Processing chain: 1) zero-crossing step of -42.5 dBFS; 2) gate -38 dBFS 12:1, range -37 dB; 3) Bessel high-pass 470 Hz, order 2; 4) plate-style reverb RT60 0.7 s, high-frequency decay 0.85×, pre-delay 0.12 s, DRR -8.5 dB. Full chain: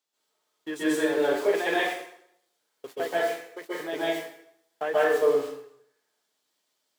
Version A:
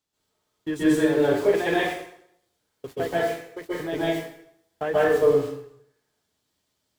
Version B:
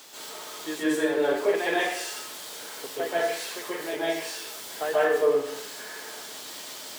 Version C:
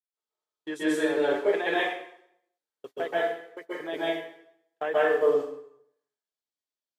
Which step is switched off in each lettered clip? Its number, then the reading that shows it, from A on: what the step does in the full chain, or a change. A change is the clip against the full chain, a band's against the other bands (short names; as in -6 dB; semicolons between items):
3, 125 Hz band +15.5 dB; 2, momentary loudness spread change -4 LU; 1, distortion -14 dB